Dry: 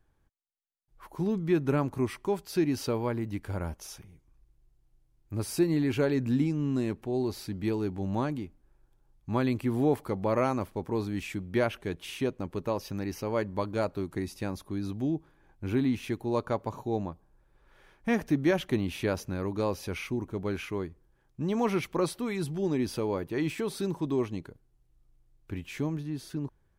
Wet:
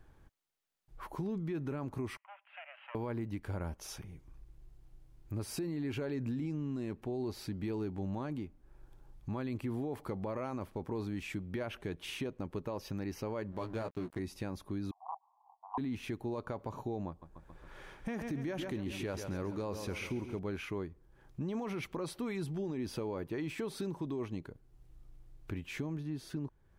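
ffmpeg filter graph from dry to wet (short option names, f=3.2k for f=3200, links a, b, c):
-filter_complex "[0:a]asettb=1/sr,asplit=3[a][b][c];[a]atrim=end=2.174[d];[b]atrim=start=2.17:end=2.95,asetpts=PTS-STARTPTS,afade=t=in:d=0.004:c=qsin,afade=t=out:st=0.776:d=0.004:c=qsin,aeval=exprs='clip(val(0),-1,0.0112)':c=same,asuperpass=centerf=1300:order=20:qfactor=0.55,aderivative[e];[c]atrim=start=2.946[f];[d][e]acrossfade=d=0.004:c1=hsin:c2=qsin[g];[g][f]acrossfade=d=0.004:c1=qsin:c2=hsin,asettb=1/sr,asplit=3[h][i][j];[h]atrim=end=13.524[k];[i]atrim=start=13.52:end=14.19,asetpts=PTS-STARTPTS,afade=t=in:d=0.004:c=qsin,afade=t=out:st=0.666:d=0.004:c=qsin,aeval=exprs='sgn(val(0))*max(abs(val(0))-0.00531,0)':c=same,asplit=2[l][m];[m]adelay=17,volume=-6dB[n];[l][n]amix=inputs=2:normalize=0,atrim=end_sample=29547[o];[j]atrim=start=14.186[p];[k][o]acrossfade=d=0.004:c1=hsin:c2=qsin[q];[q][p]acrossfade=d=0.004:c1=qsin:c2=hsin,asettb=1/sr,asplit=3[r][s][t];[r]atrim=end=14.914[u];[s]atrim=start=14.91:end=15.78,asetpts=PTS-STARTPTS,afade=t=in:d=0.004:c=qsin,afade=t=out:st=0.866:d=0.004:c=qsin,aeval=exprs='(mod(12.6*val(0)+1,2)-1)/12.6':c=same,asuperpass=centerf=880:order=12:qfactor=2.1[v];[t]atrim=start=15.776[w];[u][v]acrossfade=d=0.004:c1=hsin:c2=qsin[x];[x][w]acrossfade=d=0.004:c1=qsin:c2=hsin,asettb=1/sr,asplit=3[y][z][aa];[y]atrim=end=17.084[ab];[z]atrim=start=17.08:end=20.39,asetpts=PTS-STARTPTS,afade=t=in:d=0.004:c=qsin,afade=t=out:st=3.306:d=0.004:c=qsin,equalizer=f=7.4k:w=1.6:g=4,aecho=1:1:137|274|411|548|685|822:0.224|0.125|0.0702|0.0393|0.022|0.0123,atrim=end_sample=145971[ac];[aa]atrim=start=20.386[ad];[ab][ac]acrossfade=d=0.004:c1=hsin:c2=qsin[ae];[ae][ad]acrossfade=d=0.004:c1=qsin:c2=hsin,highshelf=f=4.5k:g=-5.5,alimiter=level_in=0.5dB:limit=-24dB:level=0:latency=1:release=34,volume=-0.5dB,acompressor=threshold=-57dB:ratio=2,volume=9.5dB"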